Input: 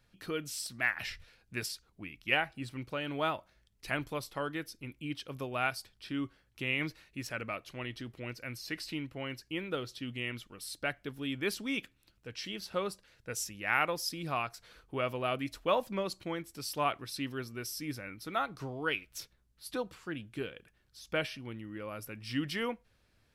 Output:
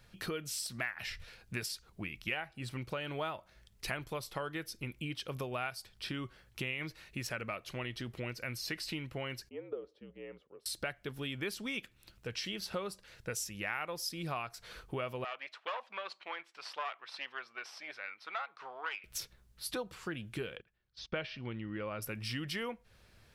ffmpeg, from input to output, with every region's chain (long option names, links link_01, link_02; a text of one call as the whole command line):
ffmpeg -i in.wav -filter_complex "[0:a]asettb=1/sr,asplit=3[link_01][link_02][link_03];[link_01]atrim=end=9.494[link_04];[link_02]atrim=start=9.49:end=10.66,asetpts=PTS-STARTPTS,afade=type=in:duration=0.004:curve=qsin,afade=type=out:start_time=1.166:duration=0.004:curve=qsin,afreqshift=-58,bandpass=frequency=490:width_type=q:width=5[link_05];[link_03]atrim=start=10.656[link_06];[link_04][link_05]acrossfade=duration=0.004:curve1=hsin:curve2=qsin[link_07];[link_07][link_06]acrossfade=duration=0.004:curve1=qsin:curve2=hsin,asettb=1/sr,asplit=3[link_08][link_09][link_10];[link_08]atrim=end=15.244[link_11];[link_09]atrim=start=15.24:end=19.04,asetpts=PTS-STARTPTS,afade=type=in:duration=0.004:curve=qsin,afade=type=out:start_time=3.796:duration=0.004:curve=qsin,aeval=exprs='(tanh(28.2*val(0)+0.75)-tanh(0.75))/28.2':channel_layout=same,asuperpass=centerf=1600:order=4:qfactor=0.65[link_12];[link_10]atrim=start=19.036[link_13];[link_11][link_12]acrossfade=duration=0.004:curve1=hsin:curve2=qsin[link_14];[link_14][link_13]acrossfade=duration=0.004:curve1=qsin:curve2=hsin,asettb=1/sr,asplit=3[link_15][link_16][link_17];[link_15]atrim=end=20.564[link_18];[link_16]atrim=start=20.56:end=22.02,asetpts=PTS-STARTPTS,afade=type=in:duration=0.004:curve=qsin,afade=type=out:start_time=1.456:duration=0.004:curve=qsin,lowpass=frequency=4700:width=0.5412,lowpass=frequency=4700:width=1.3066,agate=range=-18dB:threshold=-57dB:ratio=16:release=100:detection=peak[link_19];[link_17]atrim=start=22.016[link_20];[link_18][link_19]acrossfade=duration=0.004:curve1=hsin:curve2=qsin[link_21];[link_21][link_20]acrossfade=duration=0.004:curve1=qsin:curve2=hsin,equalizer=frequency=280:width_type=o:width=0.23:gain=-8.5,acompressor=threshold=-45dB:ratio=4,volume=8dB" out.wav